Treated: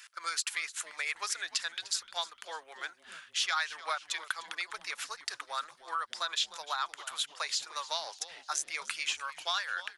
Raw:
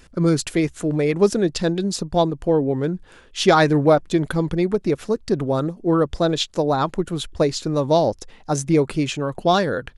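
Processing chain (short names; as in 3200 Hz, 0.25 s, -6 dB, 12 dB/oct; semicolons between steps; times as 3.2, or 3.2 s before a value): HPF 1300 Hz 24 dB/oct; compressor 3:1, threshold -34 dBFS, peak gain reduction 12.5 dB; on a send: frequency-shifting echo 0.301 s, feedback 48%, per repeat -150 Hz, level -16.5 dB; on the sum: gain +2.5 dB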